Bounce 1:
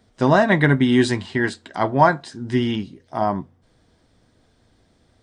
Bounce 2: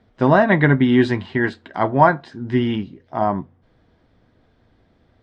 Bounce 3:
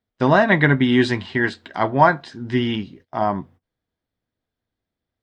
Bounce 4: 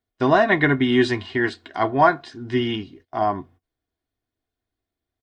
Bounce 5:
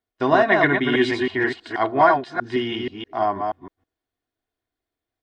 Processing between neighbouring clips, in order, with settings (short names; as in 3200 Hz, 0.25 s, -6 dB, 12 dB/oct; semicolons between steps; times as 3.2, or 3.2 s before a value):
LPF 2800 Hz 12 dB/oct; gain +1.5 dB
gate -44 dBFS, range -24 dB; high shelf 2400 Hz +10.5 dB; gain -2 dB
comb 2.8 ms, depth 54%; gain -2.5 dB
reverse delay 0.16 s, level -4 dB; tone controls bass -7 dB, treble -4 dB